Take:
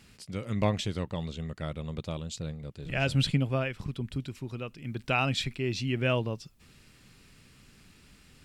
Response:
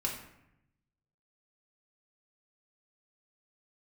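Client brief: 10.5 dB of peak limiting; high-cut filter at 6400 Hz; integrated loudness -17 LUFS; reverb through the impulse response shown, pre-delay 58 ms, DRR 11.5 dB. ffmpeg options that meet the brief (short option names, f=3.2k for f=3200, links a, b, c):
-filter_complex "[0:a]lowpass=6.4k,alimiter=level_in=1dB:limit=-24dB:level=0:latency=1,volume=-1dB,asplit=2[a][b];[1:a]atrim=start_sample=2205,adelay=58[c];[b][c]afir=irnorm=-1:irlink=0,volume=-15.5dB[d];[a][d]amix=inputs=2:normalize=0,volume=18.5dB"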